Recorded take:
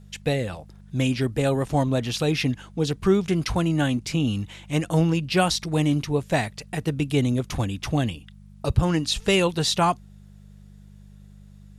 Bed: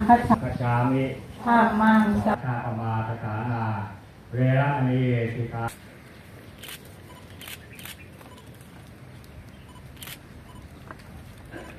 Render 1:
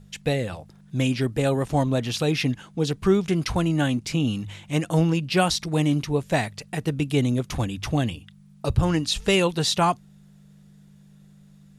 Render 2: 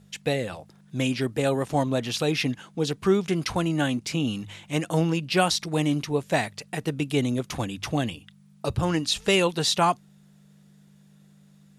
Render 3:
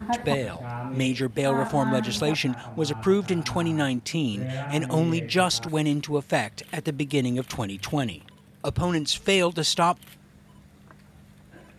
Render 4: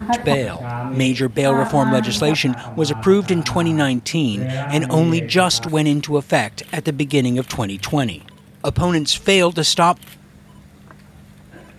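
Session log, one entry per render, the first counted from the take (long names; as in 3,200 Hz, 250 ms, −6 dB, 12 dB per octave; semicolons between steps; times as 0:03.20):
hum removal 50 Hz, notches 2
high-pass filter 200 Hz 6 dB per octave
mix in bed −10.5 dB
level +7.5 dB; brickwall limiter −2 dBFS, peak gain reduction 2 dB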